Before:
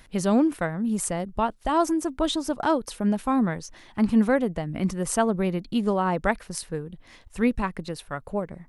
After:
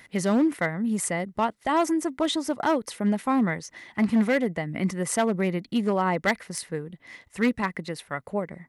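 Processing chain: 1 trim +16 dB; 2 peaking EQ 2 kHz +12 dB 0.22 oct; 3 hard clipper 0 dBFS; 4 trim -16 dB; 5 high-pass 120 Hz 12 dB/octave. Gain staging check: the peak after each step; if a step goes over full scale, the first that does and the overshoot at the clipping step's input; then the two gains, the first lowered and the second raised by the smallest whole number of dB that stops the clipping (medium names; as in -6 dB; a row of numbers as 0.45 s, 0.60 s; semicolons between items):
+6.5 dBFS, +8.5 dBFS, 0.0 dBFS, -16.0 dBFS, -12.0 dBFS; step 1, 8.5 dB; step 1 +7 dB, step 4 -7 dB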